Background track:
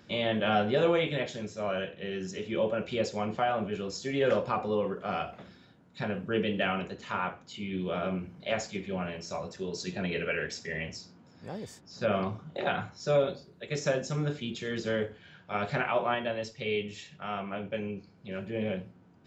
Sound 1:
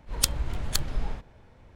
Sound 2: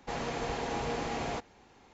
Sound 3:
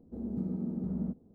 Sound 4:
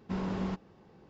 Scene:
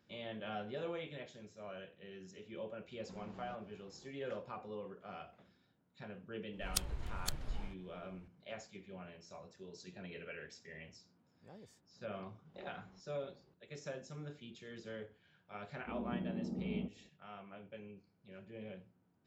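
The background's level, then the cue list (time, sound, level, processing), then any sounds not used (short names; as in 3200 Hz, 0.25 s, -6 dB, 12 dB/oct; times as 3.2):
background track -16.5 dB
3 add 4 -6 dB + compressor 5:1, threshold -45 dBFS
6.53 add 1 -12 dB
12.45 add 4 -14 dB + compressor 4:1, threshold -48 dBFS
15.75 add 3 -7.5 dB + bell 720 Hz +7 dB 2.2 oct
not used: 2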